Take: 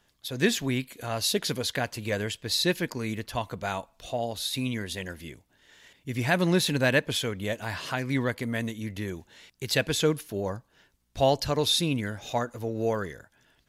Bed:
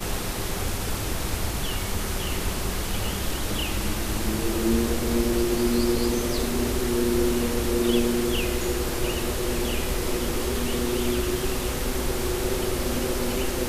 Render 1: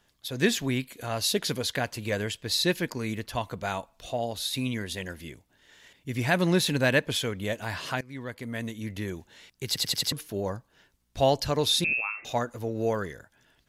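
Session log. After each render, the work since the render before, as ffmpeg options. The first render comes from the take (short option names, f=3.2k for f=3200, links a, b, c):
-filter_complex "[0:a]asettb=1/sr,asplit=3[a][b][c];[a]atrim=end=11.844[d];[b]atrim=start=11.84:end=12.25,asetpts=PTS-STARTPTS,afade=t=in:d=0.004:c=qsin,afade=t=out:st=0.406:d=0.004:c=qsin,lowpass=f=2.4k:t=q:w=0.5098,lowpass=f=2.4k:t=q:w=0.6013,lowpass=f=2.4k:t=q:w=0.9,lowpass=f=2.4k:t=q:w=2.563,afreqshift=-2800[e];[c]atrim=start=12.246[f];[d][e]acrossfade=d=0.004:c1=hsin:c2=qsin[g];[g][f]acrossfade=d=0.004:c1=qsin:c2=hsin,asplit=7[h][i][j][k][l][m][n];[h]atrim=end=8.01,asetpts=PTS-STARTPTS,afade=t=out:st=8.006:d=0.004:c=hsin:silence=0.0891251[o];[i]atrim=start=8.01:end=9.762,asetpts=PTS-STARTPTS,afade=t=in:d=0.91:silence=0.0891251[p];[j]atrim=start=9.668:end=9.762[q];[k]atrim=start=9.668:end=9.762[r];[l]atrim=start=9.668:end=9.762[s];[m]atrim=start=9.668:end=9.762[t];[n]atrim=start=10.118[u];[o][p]concat=n=2:v=0:a=1[v];[v][q]acrossfade=d=0.004:c1=hsin:c2=hsin[w];[w][r]acrossfade=d=0.004:c1=hsin:c2=hsin[x];[x][s]acrossfade=d=0.004:c1=hsin:c2=hsin[y];[y][t]acrossfade=d=0.004:c1=hsin:c2=hsin[z];[z][u]acrossfade=d=0.004:c1=hsin:c2=hsin"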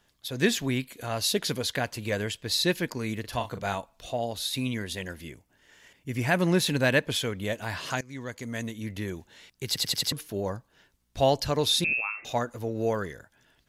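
-filter_complex "[0:a]asettb=1/sr,asplit=3[a][b][c];[a]atrim=end=3.204[d];[b]atrim=start=3.2:end=3.75,asetpts=PTS-STARTPTS,afade=t=in:d=0.004:c=qsin,afade=t=out:st=0.546:d=0.004:c=qsin,asplit=2[e][f];[f]adelay=40,volume=-8.5dB[g];[e][g]amix=inputs=2:normalize=0,atrim=end_sample=24255[h];[c]atrim=start=3.746[i];[d][h]acrossfade=d=0.004:c1=hsin:c2=qsin[j];[j][i]acrossfade=d=0.004:c1=qsin:c2=hsin,asettb=1/sr,asplit=3[k][l][m];[k]atrim=end=5.284[n];[l]atrim=start=5.28:end=6.62,asetpts=PTS-STARTPTS,afade=t=in:d=0.004:c=qsin,afade=t=out:st=1.336:d=0.004:c=qsin,equalizer=f=3.8k:w=4.3:g=-7.5[o];[m]atrim=start=6.616[p];[n][o]acrossfade=d=0.004:c1=hsin:c2=qsin[q];[q][p]acrossfade=d=0.004:c1=qsin:c2=hsin,asettb=1/sr,asplit=3[r][s][t];[r]atrim=end=7.904[u];[s]atrim=start=7.9:end=8.63,asetpts=PTS-STARTPTS,afade=t=in:d=0.004:c=qsin,afade=t=out:st=0.726:d=0.004:c=qsin,equalizer=f=6.5k:w=3.2:g=15[v];[t]atrim=start=8.626[w];[u][v]acrossfade=d=0.004:c1=hsin:c2=qsin[x];[x][w]acrossfade=d=0.004:c1=qsin:c2=hsin"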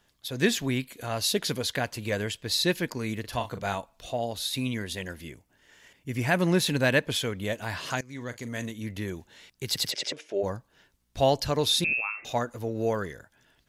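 -filter_complex "[0:a]asettb=1/sr,asplit=3[a][b][c];[a]atrim=end=8.074[d];[b]atrim=start=8.07:end=8.71,asetpts=PTS-STARTPTS,afade=t=in:d=0.004:c=qsin,afade=t=out:st=0.636:d=0.004:c=qsin,asplit=2[e][f];[f]adelay=41,volume=-13.5dB[g];[e][g]amix=inputs=2:normalize=0,atrim=end_sample=28224[h];[c]atrim=start=8.706[i];[d][h]acrossfade=d=0.004:c1=hsin:c2=qsin[j];[j][i]acrossfade=d=0.004:c1=qsin:c2=hsin,asplit=3[k][l][m];[k]afade=t=out:st=9.9:d=0.02[n];[l]highpass=380,equalizer=f=380:t=q:w=4:g=7,equalizer=f=580:t=q:w=4:g=10,equalizer=f=1.1k:t=q:w=4:g=-8,equalizer=f=2.3k:t=q:w=4:g=6,equalizer=f=4.3k:t=q:w=4:g=-7,lowpass=f=6.7k:w=0.5412,lowpass=f=6.7k:w=1.3066,afade=t=in:st=9.9:d=0.02,afade=t=out:st=10.42:d=0.02[o];[m]afade=t=in:st=10.42:d=0.02[p];[n][o][p]amix=inputs=3:normalize=0"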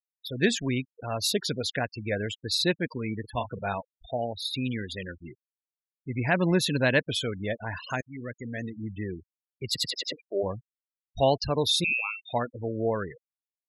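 -af "afftfilt=real='re*gte(hypot(re,im),0.0316)':imag='im*gte(hypot(re,im),0.0316)':win_size=1024:overlap=0.75"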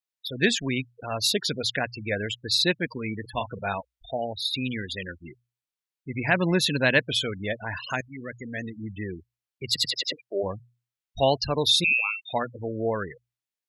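-af "equalizer=f=2.9k:w=0.53:g=5,bandreject=f=60:t=h:w=6,bandreject=f=120:t=h:w=6"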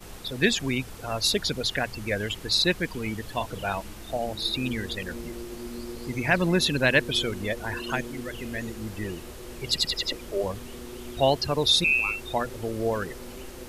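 -filter_complex "[1:a]volume=-14.5dB[a];[0:a][a]amix=inputs=2:normalize=0"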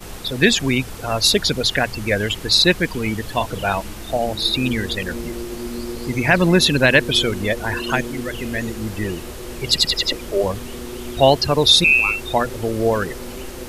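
-af "volume=8.5dB,alimiter=limit=-1dB:level=0:latency=1"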